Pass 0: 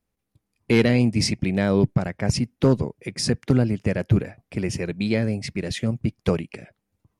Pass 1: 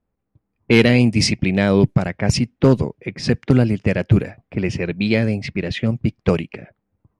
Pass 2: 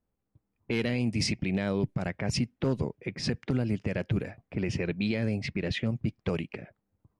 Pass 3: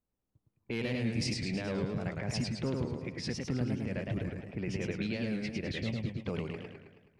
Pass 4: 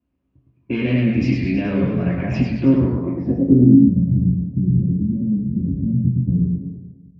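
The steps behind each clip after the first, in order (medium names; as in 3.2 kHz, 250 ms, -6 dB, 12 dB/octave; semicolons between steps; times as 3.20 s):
level-controlled noise filter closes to 1.4 kHz, open at -15 dBFS; dynamic bell 2.8 kHz, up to +5 dB, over -43 dBFS, Q 1.5; trim +4.5 dB
compression, threshold -15 dBFS, peak gain reduction 7.5 dB; peak limiter -12.5 dBFS, peak gain reduction 8 dB; trim -6 dB
modulated delay 107 ms, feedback 55%, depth 157 cents, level -3 dB; trim -6.5 dB
low-pass sweep 2.5 kHz -> 160 Hz, 2.71–3.98 s; reverberation RT60 0.55 s, pre-delay 3 ms, DRR -6.5 dB; trim -3 dB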